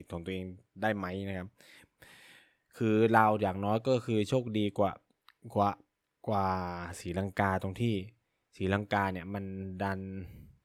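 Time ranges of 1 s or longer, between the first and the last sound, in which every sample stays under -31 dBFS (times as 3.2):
1.42–2.81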